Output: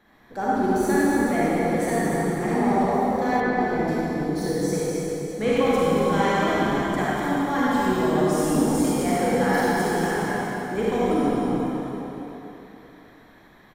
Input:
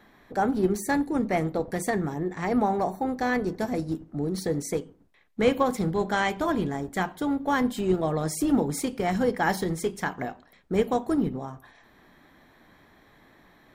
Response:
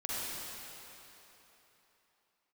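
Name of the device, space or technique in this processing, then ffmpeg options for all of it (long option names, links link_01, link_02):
cave: -filter_complex "[0:a]aecho=1:1:231:0.398[link_01];[1:a]atrim=start_sample=2205[link_02];[link_01][link_02]afir=irnorm=-1:irlink=0,asettb=1/sr,asplit=3[link_03][link_04][link_05];[link_03]atrim=end=3.404[link_06];[link_04]atrim=start=3.4:end=3.88,asetpts=PTS-STARTPTS,afade=type=in:duration=0.004:curve=qsin,afade=type=out:start_time=0.476:duration=0.004:curve=qsin,acrossover=split=3600[link_07][link_08];[link_08]acompressor=threshold=-56dB:ratio=4:attack=1:release=60[link_09];[link_07][link_09]amix=inputs=2:normalize=0[link_10];[link_05]atrim=start=3.876[link_11];[link_06][link_10]acrossfade=duration=0.004:curve1=hsin:curve2=qsin[link_12];[link_12][link_11]acrossfade=duration=0.004:curve1=qsin:curve2=hsin,volume=-1dB"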